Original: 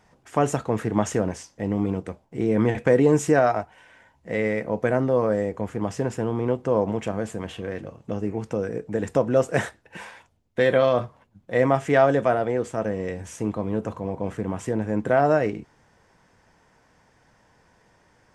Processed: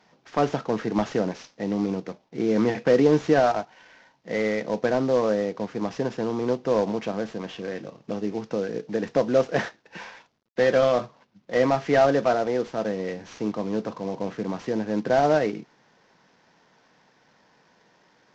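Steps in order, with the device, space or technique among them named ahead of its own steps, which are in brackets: early wireless headset (HPF 150 Hz 24 dB/oct; CVSD 32 kbps)

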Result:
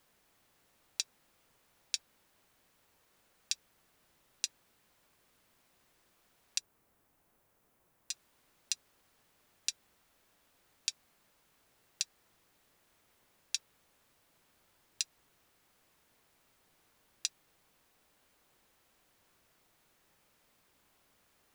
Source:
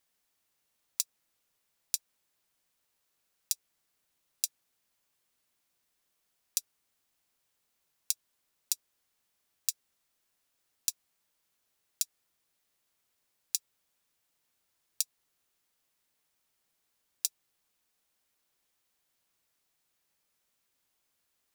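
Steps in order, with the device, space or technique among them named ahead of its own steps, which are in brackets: cassette deck with a dirty head (tape spacing loss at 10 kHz 29 dB; wow and flutter; white noise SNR 25 dB); 6.58–8.11 bell 4000 Hz -9 dB 2.4 oct; gain +15.5 dB

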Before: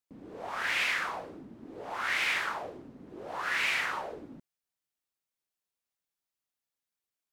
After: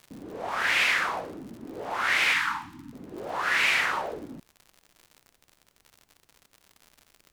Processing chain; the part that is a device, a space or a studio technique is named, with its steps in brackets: vinyl LP (crackle 98/s -45 dBFS; pink noise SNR 41 dB); 2.33–2.93 Chebyshev band-stop 310–880 Hz, order 4; gain +6 dB

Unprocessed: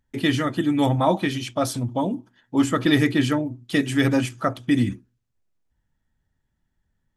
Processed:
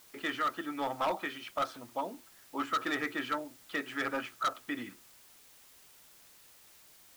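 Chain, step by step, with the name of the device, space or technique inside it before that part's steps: drive-through speaker (BPF 510–2900 Hz; bell 1300 Hz +11 dB 0.45 oct; hard clip -17.5 dBFS, distortion -9 dB; white noise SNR 21 dB); gain -8.5 dB

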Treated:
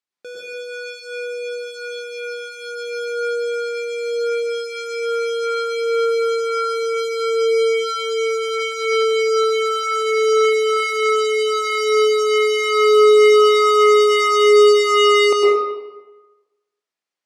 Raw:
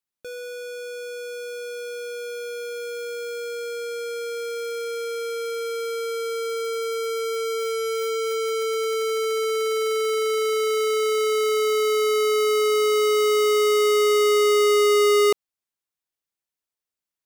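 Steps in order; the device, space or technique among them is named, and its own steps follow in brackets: supermarket ceiling speaker (BPF 240–6500 Hz; reverb RT60 1.2 s, pre-delay 98 ms, DRR -4.5 dB); gain +1.5 dB

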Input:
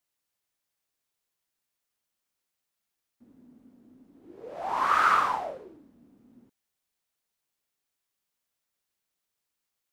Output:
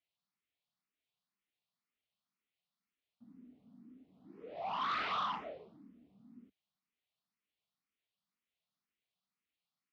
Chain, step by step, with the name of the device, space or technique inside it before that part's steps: barber-pole phaser into a guitar amplifier (endless phaser +2 Hz; soft clip -29 dBFS, distortion -9 dB; speaker cabinet 75–4200 Hz, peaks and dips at 98 Hz -8 dB, 190 Hz +6 dB, 360 Hz -7 dB, 530 Hz -8 dB, 900 Hz -6 dB, 1600 Hz -8 dB)

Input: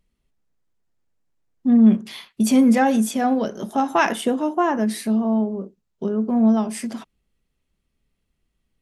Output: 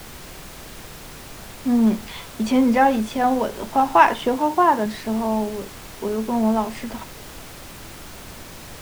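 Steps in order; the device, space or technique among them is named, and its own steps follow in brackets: horn gramophone (BPF 290–3700 Hz; bell 940 Hz +9 dB 0.29 oct; wow and flutter 24 cents; pink noise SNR 16 dB); 4.36–4.86 HPF 97 Hz; gain +1.5 dB

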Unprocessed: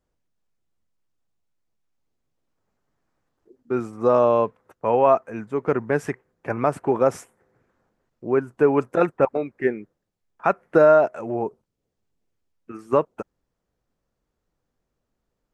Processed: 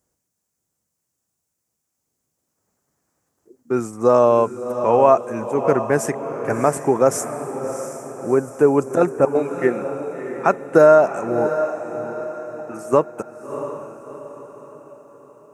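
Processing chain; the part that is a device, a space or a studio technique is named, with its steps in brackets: budget condenser microphone (HPF 77 Hz; resonant high shelf 5100 Hz +11 dB, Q 1.5); diffused feedback echo 0.675 s, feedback 47%, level -9.5 dB; 8.34–9.35 dynamic EQ 2300 Hz, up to -6 dB, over -37 dBFS, Q 0.76; gain +3.5 dB

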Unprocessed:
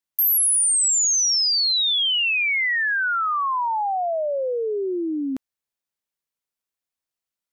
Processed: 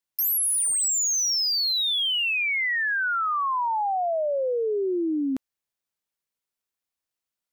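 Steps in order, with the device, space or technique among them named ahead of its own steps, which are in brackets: clipper into limiter (hard clip -18.5 dBFS, distortion -20 dB; limiter -22 dBFS, peak gain reduction 3.5 dB)

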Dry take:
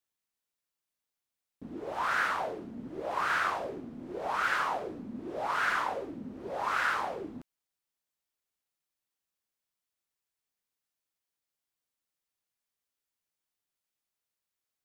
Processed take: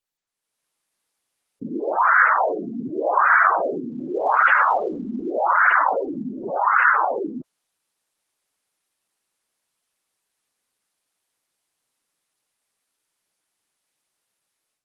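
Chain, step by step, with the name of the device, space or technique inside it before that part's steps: 6.28–6.92 dynamic EQ 470 Hz, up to -5 dB, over -51 dBFS, Q 2.2; noise-suppressed video call (HPF 160 Hz 6 dB/oct; spectral gate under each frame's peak -15 dB strong; AGC gain up to 15 dB; Opus 24 kbps 48000 Hz)

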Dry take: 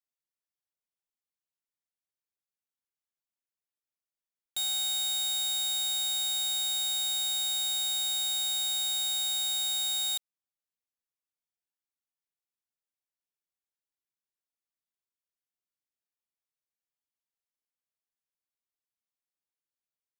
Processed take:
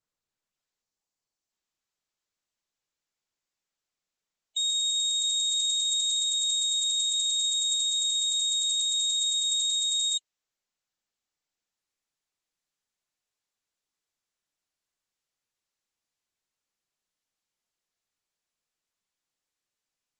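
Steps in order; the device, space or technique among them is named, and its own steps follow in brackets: spectral gain 0.82–1.51, 1200–4100 Hz -27 dB; noise-suppressed video call (HPF 100 Hz 6 dB/oct; spectral gate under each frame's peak -20 dB strong; AGC gain up to 7.5 dB; gain -2.5 dB; Opus 12 kbps 48000 Hz)

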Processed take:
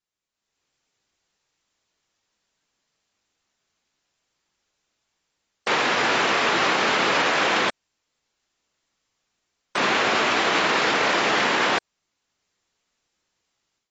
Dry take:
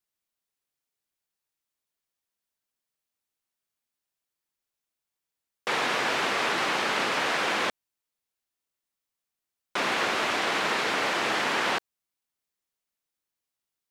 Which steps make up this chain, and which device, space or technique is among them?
low-bitrate web radio (AGC gain up to 13.5 dB; limiter -14 dBFS, peak gain reduction 11 dB; AAC 24 kbps 24000 Hz)

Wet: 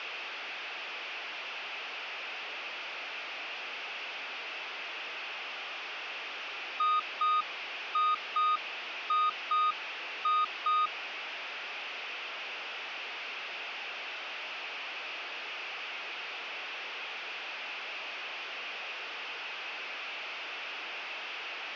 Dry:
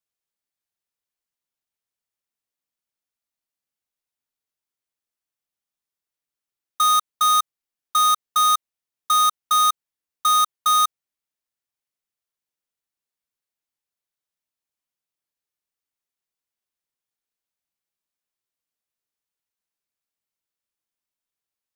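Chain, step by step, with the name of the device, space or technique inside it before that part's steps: digital answering machine (BPF 320–3300 Hz; delta modulation 32 kbps, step -24.5 dBFS; speaker cabinet 490–4300 Hz, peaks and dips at 540 Hz -3 dB, 1000 Hz -4 dB, 1800 Hz -3 dB, 2600 Hz +7 dB, 4000 Hz -7 dB); gain -8.5 dB

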